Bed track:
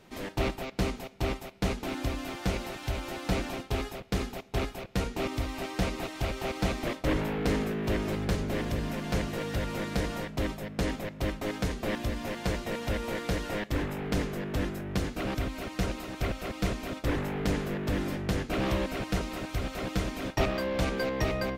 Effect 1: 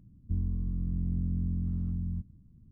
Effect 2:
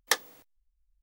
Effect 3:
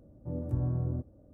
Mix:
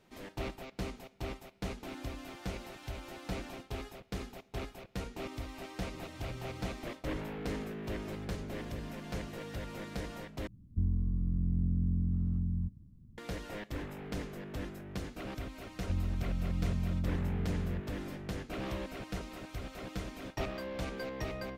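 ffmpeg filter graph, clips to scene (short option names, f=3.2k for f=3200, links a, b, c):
-filter_complex "[1:a]asplit=2[a][b];[0:a]volume=-9.5dB,asplit=2[c][d];[c]atrim=end=10.474[e];[a]atrim=end=2.71[f];[d]atrim=start=13.176[g];[3:a]atrim=end=1.33,asetpts=PTS-STARTPTS,volume=-15.5dB,afade=t=in:d=0.004:c=hsin,afade=t=out:st=1.326:d=0.004:c=hsin,adelay=5670[h];[b]atrim=end=2.71,asetpts=PTS-STARTPTS,volume=-2.5dB,afade=t=in:d=0.004:c=hsin,afade=t=out:st=2.706:d=0.004:c=hsin,adelay=15590[i];[e][f]acrossfade=d=0.004:c1=hsin:c2=hsin[j];[j][g]acrossfade=d=0.004:c1=hsin:c2=hsin[k];[k][h][i]amix=inputs=3:normalize=0"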